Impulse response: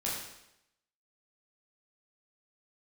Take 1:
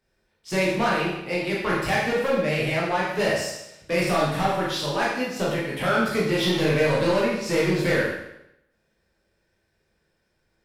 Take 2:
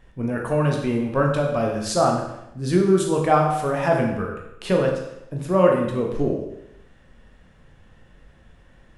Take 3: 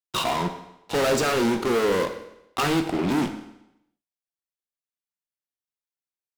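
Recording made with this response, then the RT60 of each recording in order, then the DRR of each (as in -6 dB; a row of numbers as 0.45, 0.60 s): 1; 0.85, 0.85, 0.85 s; -6.5, 0.0, 6.5 dB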